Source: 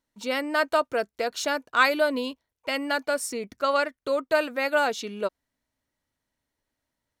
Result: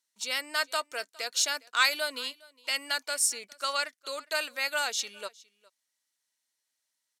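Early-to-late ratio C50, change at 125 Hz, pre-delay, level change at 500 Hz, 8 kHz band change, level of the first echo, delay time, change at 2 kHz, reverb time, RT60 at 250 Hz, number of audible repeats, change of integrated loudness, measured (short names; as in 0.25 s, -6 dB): none, n/a, none, -13.0 dB, +7.5 dB, -23.5 dB, 0.41 s, -3.5 dB, none, none, 1, -3.5 dB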